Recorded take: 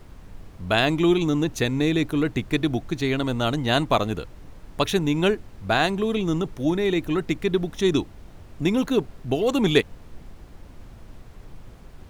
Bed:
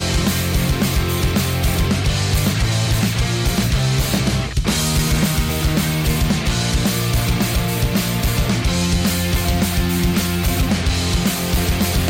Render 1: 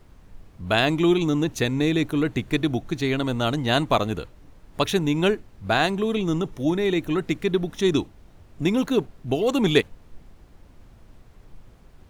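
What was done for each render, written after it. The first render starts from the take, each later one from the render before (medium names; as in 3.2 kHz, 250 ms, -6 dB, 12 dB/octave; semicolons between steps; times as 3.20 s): noise print and reduce 6 dB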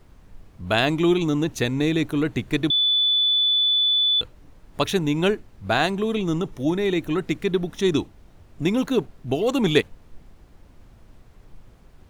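2.70–4.21 s: bleep 3.48 kHz -16.5 dBFS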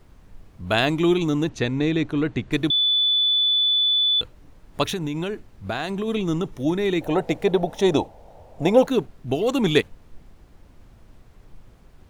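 1.49–2.52 s: distance through air 91 m; 4.91–6.08 s: compression 12:1, threshold -22 dBFS; 7.01–8.87 s: high-order bell 650 Hz +15.5 dB 1.2 oct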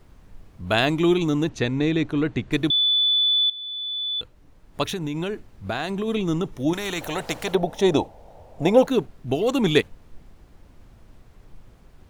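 3.50–5.29 s: fade in, from -17.5 dB; 6.73–7.55 s: spectrum-flattening compressor 2:1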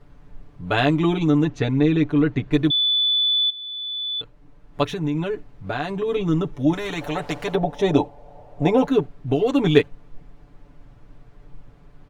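low-pass 2.2 kHz 6 dB/octave; comb 6.9 ms, depth 87%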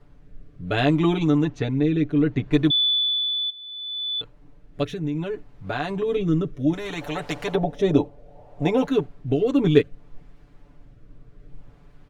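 rotary cabinet horn 0.65 Hz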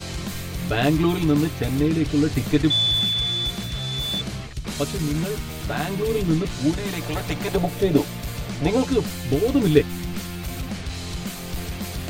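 add bed -12.5 dB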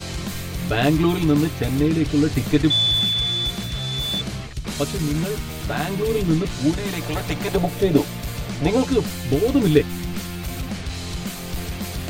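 trim +1.5 dB; peak limiter -3 dBFS, peak gain reduction 2.5 dB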